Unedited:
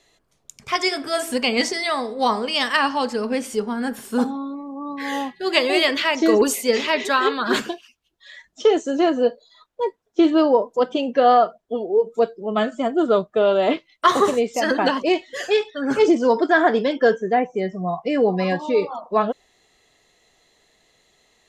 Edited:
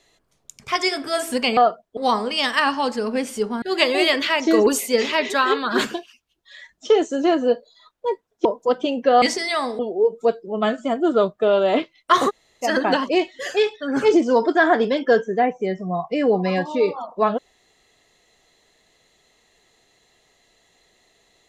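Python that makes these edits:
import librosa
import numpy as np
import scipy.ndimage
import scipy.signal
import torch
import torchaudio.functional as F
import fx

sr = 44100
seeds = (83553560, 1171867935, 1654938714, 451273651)

y = fx.edit(x, sr, fx.swap(start_s=1.57, length_s=0.57, other_s=11.33, other_length_s=0.4),
    fx.cut(start_s=3.79, length_s=1.58),
    fx.cut(start_s=10.2, length_s=0.36),
    fx.room_tone_fill(start_s=14.23, length_s=0.34, crossfade_s=0.04), tone=tone)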